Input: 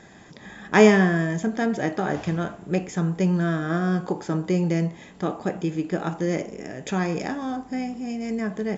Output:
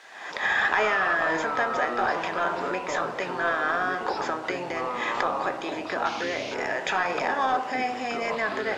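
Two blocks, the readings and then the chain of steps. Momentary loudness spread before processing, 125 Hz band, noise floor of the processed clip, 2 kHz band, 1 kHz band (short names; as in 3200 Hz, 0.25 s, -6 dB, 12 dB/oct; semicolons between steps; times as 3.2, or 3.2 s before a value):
11 LU, -20.5 dB, -36 dBFS, +5.0 dB, +5.5 dB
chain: recorder AGC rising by 64 dB/s; HPF 800 Hz 12 dB/oct; high shelf 6000 Hz +5 dB; painted sound noise, 6.05–6.55, 2100–6800 Hz -33 dBFS; added noise blue -40 dBFS; overdrive pedal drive 12 dB, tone 1600 Hz, clips at -7.5 dBFS; echoes that change speed 0.236 s, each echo -5 st, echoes 3, each echo -6 dB; air absorption 100 m; gain -3 dB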